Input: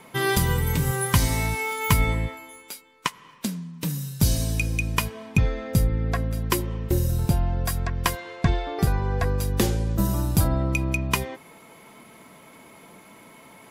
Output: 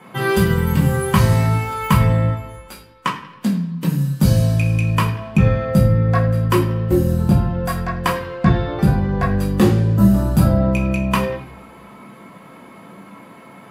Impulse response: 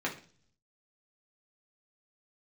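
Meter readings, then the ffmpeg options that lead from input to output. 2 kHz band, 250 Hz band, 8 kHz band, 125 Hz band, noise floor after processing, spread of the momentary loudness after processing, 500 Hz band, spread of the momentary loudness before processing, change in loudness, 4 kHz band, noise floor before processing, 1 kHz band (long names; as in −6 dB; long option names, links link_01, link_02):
+3.0 dB, +11.0 dB, −3.5 dB, +8.5 dB, −43 dBFS, 7 LU, +8.5 dB, 10 LU, +7.5 dB, +0.5 dB, −50 dBFS, +7.0 dB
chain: -filter_complex "[1:a]atrim=start_sample=2205,asetrate=30870,aresample=44100[link_01];[0:a][link_01]afir=irnorm=-1:irlink=0,volume=-1.5dB"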